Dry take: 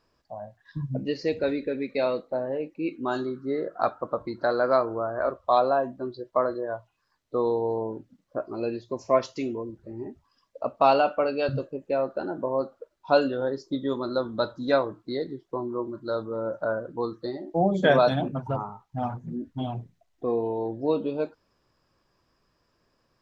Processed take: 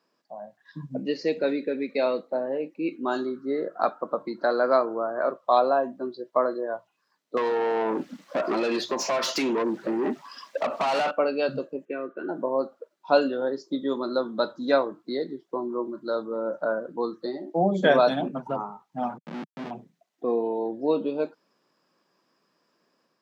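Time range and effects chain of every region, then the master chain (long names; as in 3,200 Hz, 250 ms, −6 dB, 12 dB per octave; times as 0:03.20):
0:07.37–0:11.11: parametric band 430 Hz −4.5 dB 1.3 octaves + downward compressor 20 to 1, threshold −36 dBFS + mid-hump overdrive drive 33 dB, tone 4,400 Hz, clips at −17 dBFS
0:11.85–0:12.29: band-pass filter 160–4,500 Hz + phaser with its sweep stopped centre 1,900 Hz, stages 4 + comb filter 2.6 ms, depth 51%
0:19.18–0:19.71: high-pass filter 51 Hz 6 dB per octave + comparator with hysteresis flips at −33.5 dBFS + high-frequency loss of the air 210 metres
whole clip: Butterworth high-pass 170 Hz 36 dB per octave; automatic gain control gain up to 3 dB; level −2 dB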